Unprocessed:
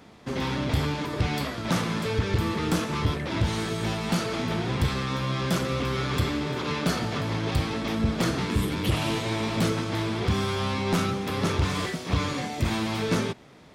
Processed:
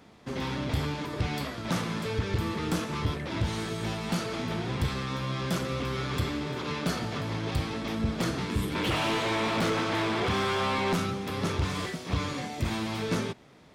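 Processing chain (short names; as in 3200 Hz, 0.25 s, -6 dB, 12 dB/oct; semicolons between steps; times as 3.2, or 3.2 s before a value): 8.75–10.93 overdrive pedal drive 21 dB, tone 2300 Hz, clips at -15 dBFS; gain -4 dB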